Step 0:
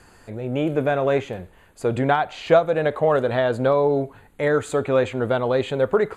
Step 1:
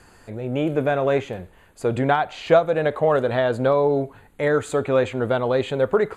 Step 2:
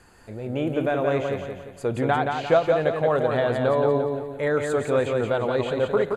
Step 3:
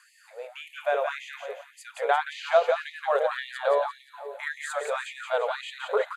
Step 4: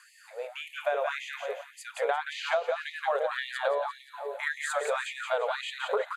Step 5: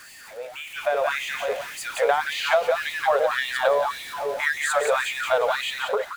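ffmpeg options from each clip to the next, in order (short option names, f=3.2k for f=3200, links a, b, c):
-af anull
-af "aecho=1:1:174|348|522|696|870:0.596|0.256|0.11|0.0474|0.0204,volume=-3.5dB"
-af "afftfilt=real='re*gte(b*sr/1024,400*pow(1800/400,0.5+0.5*sin(2*PI*1.8*pts/sr)))':imag='im*gte(b*sr/1024,400*pow(1800/400,0.5+0.5*sin(2*PI*1.8*pts/sr)))':win_size=1024:overlap=0.75"
-af "acompressor=threshold=-26dB:ratio=12,volume=2dB"
-af "aeval=exprs='val(0)+0.5*0.00944*sgn(val(0))':c=same,dynaudnorm=f=570:g=3:m=8dB,volume=-1dB"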